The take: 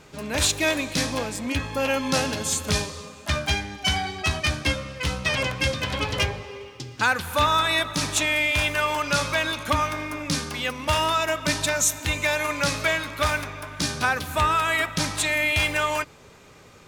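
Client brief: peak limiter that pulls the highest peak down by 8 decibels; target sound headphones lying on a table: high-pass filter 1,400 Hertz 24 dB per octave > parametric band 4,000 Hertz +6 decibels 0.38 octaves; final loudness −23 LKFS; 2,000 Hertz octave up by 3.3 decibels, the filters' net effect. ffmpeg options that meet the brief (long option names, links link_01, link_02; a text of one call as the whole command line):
ffmpeg -i in.wav -af "equalizer=frequency=2000:width_type=o:gain=4.5,alimiter=limit=-14.5dB:level=0:latency=1,highpass=frequency=1400:width=0.5412,highpass=frequency=1400:width=1.3066,equalizer=frequency=4000:width_type=o:width=0.38:gain=6,volume=2dB" out.wav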